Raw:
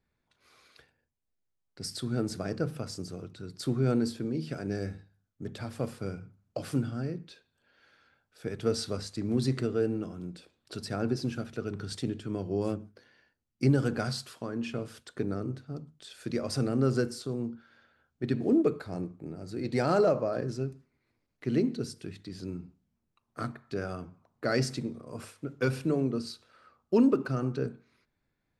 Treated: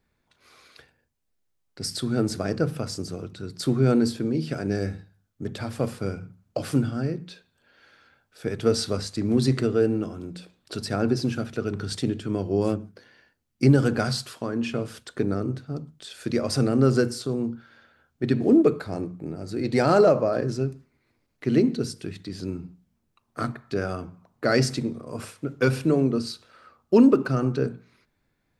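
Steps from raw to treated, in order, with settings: hum notches 60/120/180 Hz; trim +7 dB

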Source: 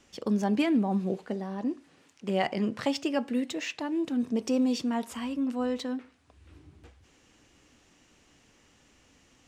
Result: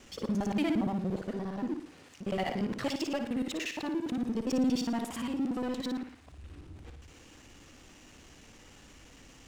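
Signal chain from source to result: time reversed locally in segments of 58 ms; bass shelf 63 Hz +8 dB; power-law waveshaper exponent 0.7; on a send: flutter echo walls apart 9.8 m, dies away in 0.42 s; on the sum: trim -8 dB

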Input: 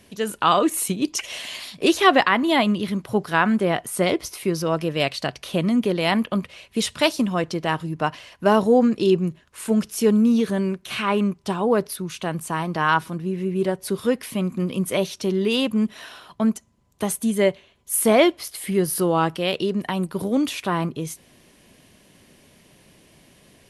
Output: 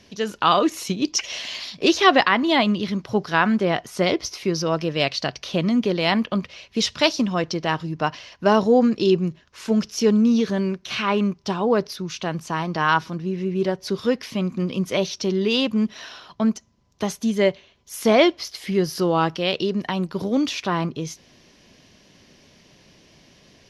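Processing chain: resonant high shelf 7.2 kHz -9.5 dB, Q 3

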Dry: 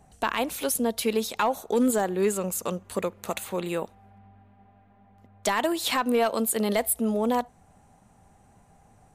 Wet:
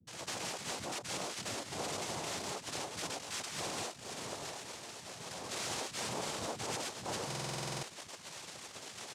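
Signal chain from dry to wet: rotating-head pitch shifter -3 st; steep low-pass 2 kHz 36 dB/octave; spectral gate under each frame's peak -20 dB weak; dynamic bell 1.5 kHz, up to -5 dB, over -57 dBFS, Q 0.97; peak limiter -40.5 dBFS, peak gain reduction 11 dB; compression 6:1, threshold -56 dBFS, peak gain reduction 10 dB; waveshaping leveller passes 5; noise-vocoded speech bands 2; bands offset in time lows, highs 70 ms, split 240 Hz; buffer glitch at 7.27 s, samples 2048, times 11; trim +10 dB

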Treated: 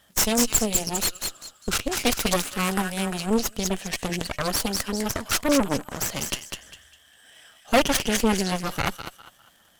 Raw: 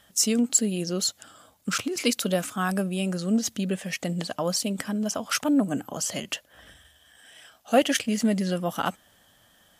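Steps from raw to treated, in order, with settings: feedback echo behind a high-pass 201 ms, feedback 34%, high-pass 1.5 kHz, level -4 dB; crackle 170 per s -47 dBFS; Chebyshev shaper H 8 -10 dB, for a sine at -7.5 dBFS; trim -1.5 dB

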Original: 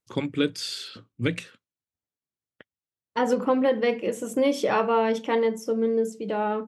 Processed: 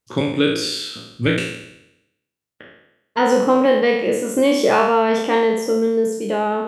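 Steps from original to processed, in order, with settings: spectral sustain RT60 0.85 s; trim +5 dB

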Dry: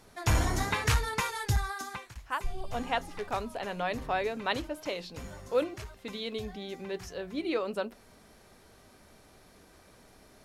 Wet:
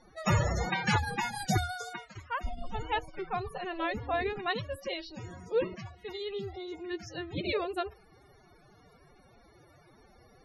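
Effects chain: formant-preserving pitch shift +10.5 st; loudest bins only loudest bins 64

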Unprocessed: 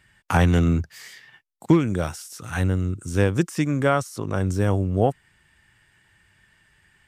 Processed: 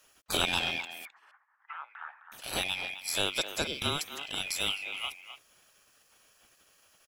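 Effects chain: split-band scrambler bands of 2 kHz; spectral gate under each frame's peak -20 dB weak; in parallel at +0.5 dB: peak limiter -24.5 dBFS, peak gain reduction 10.5 dB; on the sum: bit crusher 11-bit; 1.05–2.32 s: Chebyshev band-pass 860–1800 Hz, order 3; speakerphone echo 260 ms, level -10 dB

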